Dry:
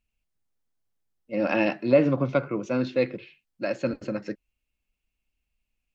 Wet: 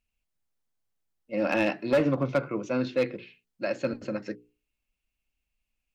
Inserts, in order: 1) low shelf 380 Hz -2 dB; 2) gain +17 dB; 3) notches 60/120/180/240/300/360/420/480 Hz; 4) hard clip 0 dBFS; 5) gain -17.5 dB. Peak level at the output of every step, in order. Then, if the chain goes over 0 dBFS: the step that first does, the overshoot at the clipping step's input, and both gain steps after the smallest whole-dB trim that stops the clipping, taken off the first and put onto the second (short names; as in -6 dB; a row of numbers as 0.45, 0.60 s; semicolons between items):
-8.5, +8.5, +9.0, 0.0, -17.5 dBFS; step 2, 9.0 dB; step 2 +8 dB, step 5 -8.5 dB